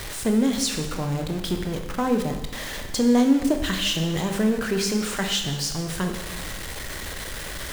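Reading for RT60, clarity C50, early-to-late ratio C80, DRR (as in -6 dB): 1.1 s, 6.5 dB, 8.5 dB, 4.0 dB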